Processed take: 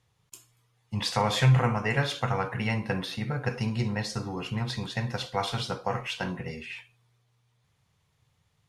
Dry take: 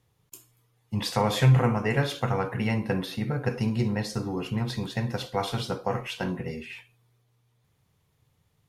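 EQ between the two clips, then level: LPF 8900 Hz 12 dB/oct; low shelf 87 Hz -5 dB; bell 320 Hz -7.5 dB 1.7 oct; +2.0 dB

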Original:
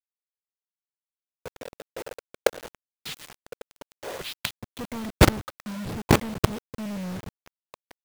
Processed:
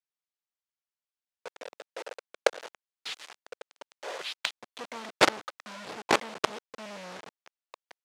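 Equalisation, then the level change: BPF 530–6600 Hz; 0.0 dB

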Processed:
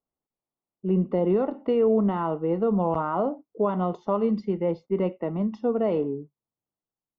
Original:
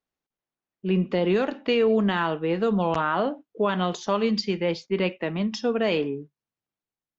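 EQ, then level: polynomial smoothing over 65 samples; 0.0 dB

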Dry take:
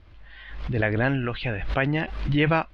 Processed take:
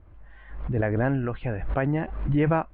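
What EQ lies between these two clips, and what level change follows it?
LPF 1200 Hz 12 dB/oct; 0.0 dB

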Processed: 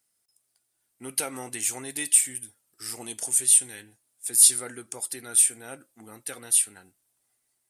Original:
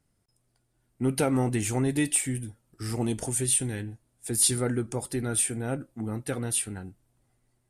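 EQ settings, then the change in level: tone controls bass -4 dB, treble 0 dB; tilt +4 dB/oct; -5.5 dB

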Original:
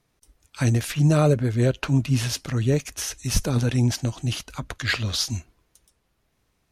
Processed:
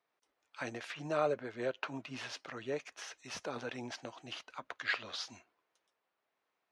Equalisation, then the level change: HPF 650 Hz 12 dB/oct; tape spacing loss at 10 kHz 27 dB; -3.5 dB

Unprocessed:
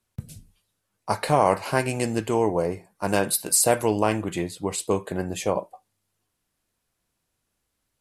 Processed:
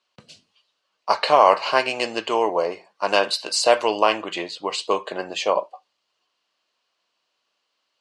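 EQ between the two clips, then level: speaker cabinet 460–6200 Hz, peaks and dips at 600 Hz +4 dB, 1100 Hz +7 dB, 2900 Hz +10 dB, 4400 Hz +8 dB; +3.0 dB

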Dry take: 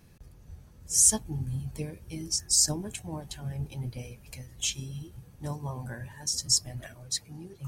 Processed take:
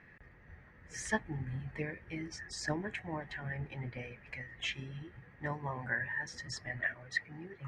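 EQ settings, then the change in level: synth low-pass 1900 Hz, resonance Q 9.2; low shelf 170 Hz -11 dB; 0.0 dB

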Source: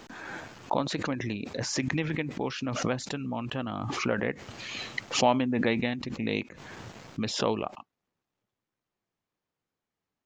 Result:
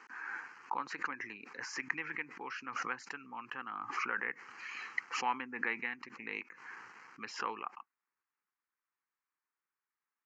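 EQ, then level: HPF 770 Hz 12 dB/oct; air absorption 160 m; fixed phaser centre 1500 Hz, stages 4; +1.5 dB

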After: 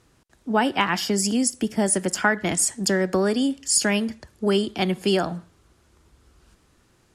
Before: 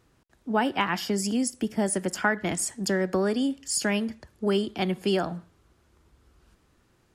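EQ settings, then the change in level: LPF 11000 Hz 12 dB/oct; high shelf 5100 Hz +7 dB; +3.5 dB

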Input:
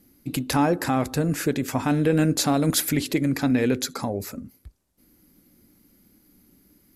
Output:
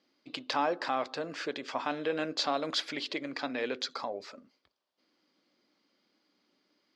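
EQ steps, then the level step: speaker cabinet 500–5000 Hz, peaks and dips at 600 Hz +4 dB, 1100 Hz +5 dB, 3200 Hz +6 dB, 4700 Hz +5 dB; -6.5 dB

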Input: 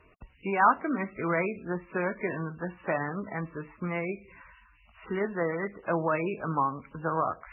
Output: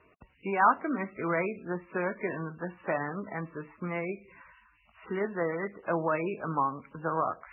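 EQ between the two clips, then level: HPF 160 Hz 6 dB/oct; air absorption 190 m; 0.0 dB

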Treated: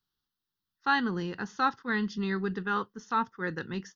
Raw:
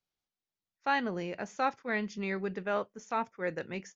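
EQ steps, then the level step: fixed phaser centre 2300 Hz, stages 6; +7.0 dB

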